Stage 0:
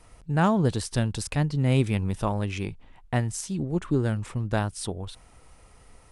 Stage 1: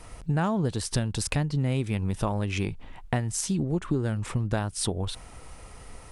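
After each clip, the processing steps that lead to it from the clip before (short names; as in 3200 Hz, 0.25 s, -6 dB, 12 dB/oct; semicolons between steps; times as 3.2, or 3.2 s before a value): compressor 5:1, threshold -32 dBFS, peak gain reduction 14.5 dB; gain +8 dB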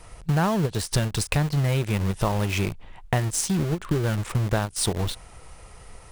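bell 260 Hz -10 dB 0.31 oct; in parallel at -4 dB: bit-crush 5-bit; on the sum: ending taper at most 340 dB/s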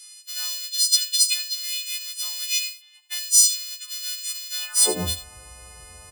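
frequency quantiser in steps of 3 st; echo 80 ms -12 dB; high-pass sweep 4000 Hz -> 61 Hz, 4.6–5.14; gain -2 dB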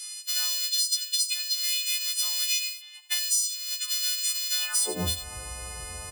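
compressor 8:1, threshold -30 dBFS, peak gain reduction 19 dB; gain +6.5 dB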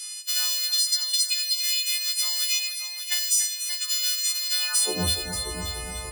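multi-head echo 0.291 s, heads first and second, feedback 44%, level -10 dB; gain +2.5 dB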